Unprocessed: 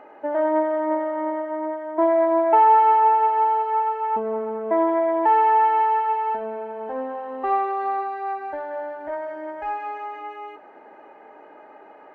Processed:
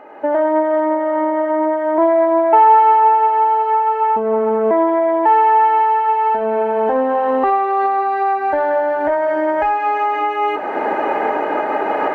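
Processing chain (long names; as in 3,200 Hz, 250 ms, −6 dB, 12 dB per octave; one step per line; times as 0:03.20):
camcorder AGC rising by 23 dB per second
level +5 dB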